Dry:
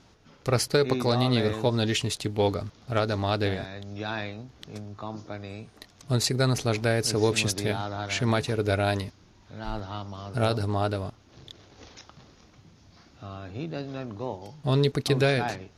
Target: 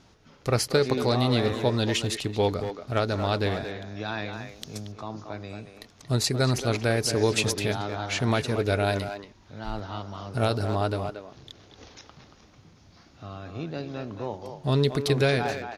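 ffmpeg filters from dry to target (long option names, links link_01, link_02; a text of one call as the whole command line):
ffmpeg -i in.wav -filter_complex "[0:a]asettb=1/sr,asplit=3[link_01][link_02][link_03];[link_01]atrim=end=4.334[link_04];[link_02]atrim=start=4.33:end=4.92,asetpts=PTS-STARTPTS,afade=type=in:duration=0.004:curve=qsin,afade=type=out:start_time=0.586:duration=0.004:curve=qsin,bass=frequency=250:gain=2,treble=frequency=4000:gain=13[link_05];[link_03]atrim=start=4.916[link_06];[link_04][link_05]acrossfade=duration=0.004:curve1=hsin:curve2=qsin[link_07];[link_07][link_06]acrossfade=duration=0.004:curve1=qsin:curve2=hsin,asplit=2[link_08][link_09];[link_09]adelay=230,highpass=300,lowpass=3400,asoftclip=type=hard:threshold=-19.5dB,volume=-7dB[link_10];[link_08][link_10]amix=inputs=2:normalize=0" out.wav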